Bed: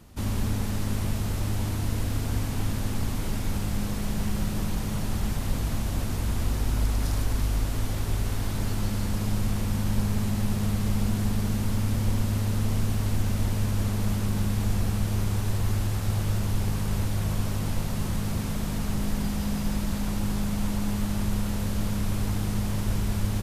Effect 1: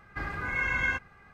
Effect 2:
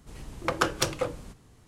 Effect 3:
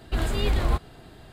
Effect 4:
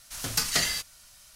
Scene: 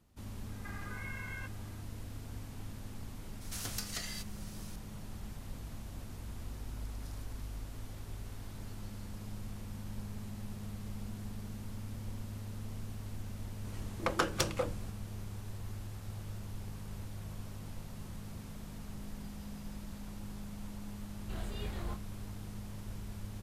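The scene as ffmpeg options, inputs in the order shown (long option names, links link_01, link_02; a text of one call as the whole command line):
ffmpeg -i bed.wav -i cue0.wav -i cue1.wav -i cue2.wav -i cue3.wav -filter_complex "[0:a]volume=-17dB[link_01];[1:a]acompressor=threshold=-35dB:ratio=6:attack=3.2:release=140:knee=1:detection=peak[link_02];[4:a]acompressor=threshold=-37dB:ratio=16:attack=41:release=350:knee=6:detection=rms[link_03];[2:a]acontrast=75[link_04];[3:a]asplit=2[link_05][link_06];[link_06]adelay=26,volume=-3dB[link_07];[link_05][link_07]amix=inputs=2:normalize=0[link_08];[link_02]atrim=end=1.33,asetpts=PTS-STARTPTS,volume=-7dB,afade=type=in:duration=0.004:curve=hsin,afade=type=out:start_time=1.326:duration=0.004:curve=hsin,adelay=490[link_09];[link_03]atrim=end=1.35,asetpts=PTS-STARTPTS,volume=-1.5dB,afade=type=in:duration=0.004:curve=hsin,afade=type=out:start_time=1.346:duration=0.004:curve=hsin,adelay=150381S[link_10];[link_04]atrim=end=1.67,asetpts=PTS-STARTPTS,volume=-11.5dB,afade=type=in:duration=0.004:curve=hsin,afade=type=out:start_time=1.666:duration=0.004:curve=hsin,adelay=13580[link_11];[link_08]atrim=end=1.32,asetpts=PTS-STARTPTS,volume=-18dB,afade=type=in:duration=0.004:curve=hsin,afade=type=out:start_time=1.316:duration=0.004:curve=hsin,adelay=21170[link_12];[link_01][link_09][link_10][link_11][link_12]amix=inputs=5:normalize=0" out.wav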